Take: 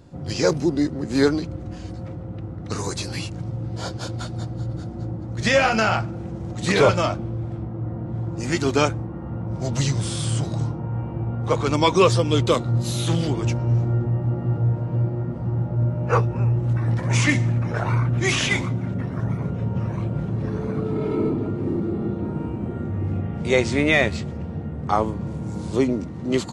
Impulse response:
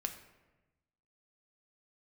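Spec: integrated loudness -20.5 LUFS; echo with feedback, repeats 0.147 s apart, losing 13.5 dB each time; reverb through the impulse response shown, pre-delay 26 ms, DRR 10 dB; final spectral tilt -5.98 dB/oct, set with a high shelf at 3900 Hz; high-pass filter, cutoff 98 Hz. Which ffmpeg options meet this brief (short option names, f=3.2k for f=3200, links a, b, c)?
-filter_complex "[0:a]highpass=98,highshelf=f=3.9k:g=-5.5,aecho=1:1:147|294:0.211|0.0444,asplit=2[a][b];[1:a]atrim=start_sample=2205,adelay=26[c];[b][c]afir=irnorm=-1:irlink=0,volume=-10dB[d];[a][d]amix=inputs=2:normalize=0,volume=2.5dB"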